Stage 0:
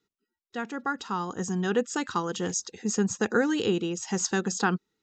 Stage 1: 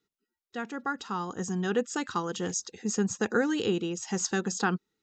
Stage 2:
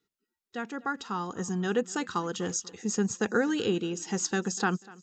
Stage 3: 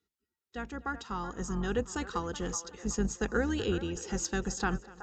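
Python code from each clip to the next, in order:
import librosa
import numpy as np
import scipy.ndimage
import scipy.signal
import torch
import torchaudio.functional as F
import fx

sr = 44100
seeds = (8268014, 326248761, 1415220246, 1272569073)

y1 = fx.notch(x, sr, hz=960.0, q=26.0)
y1 = y1 * librosa.db_to_amplitude(-2.0)
y2 = fx.echo_feedback(y1, sr, ms=245, feedback_pct=43, wet_db=-22)
y3 = fx.octave_divider(y2, sr, octaves=2, level_db=-2.0)
y3 = fx.cheby_harmonics(y3, sr, harmonics=(2,), levels_db=(-26,), full_scale_db=-13.0)
y3 = fx.echo_wet_bandpass(y3, sr, ms=375, feedback_pct=37, hz=950.0, wet_db=-10)
y3 = y3 * librosa.db_to_amplitude(-4.0)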